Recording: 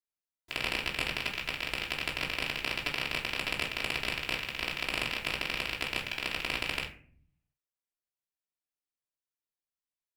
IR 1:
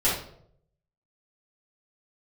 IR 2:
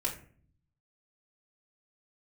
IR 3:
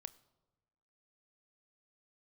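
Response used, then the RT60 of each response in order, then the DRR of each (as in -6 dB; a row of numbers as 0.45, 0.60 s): 2; 0.70, 0.45, 1.2 s; -10.0, -4.0, 14.0 dB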